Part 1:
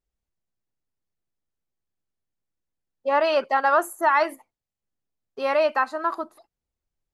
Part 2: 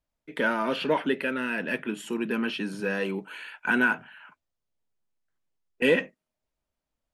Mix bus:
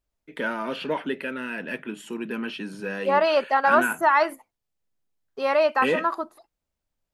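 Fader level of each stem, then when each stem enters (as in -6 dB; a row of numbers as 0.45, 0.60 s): +0.5, -2.5 dB; 0.00, 0.00 s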